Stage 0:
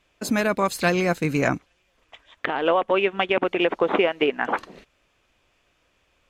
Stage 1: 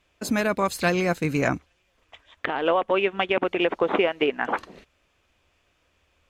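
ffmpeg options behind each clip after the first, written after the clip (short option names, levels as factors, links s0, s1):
-af "equalizer=f=77:t=o:w=0.4:g=8.5,volume=0.841"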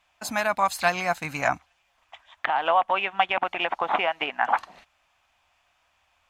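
-af "lowshelf=f=580:t=q:w=3:g=-9.5"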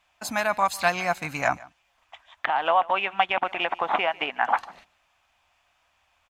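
-af "aecho=1:1:148:0.0794"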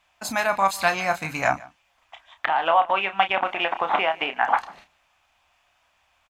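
-filter_complex "[0:a]asplit=2[s0][s1];[s1]adelay=31,volume=0.355[s2];[s0][s2]amix=inputs=2:normalize=0,volume=1.19"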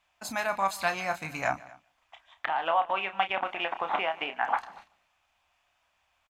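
-af "aecho=1:1:236:0.0708,volume=0.447"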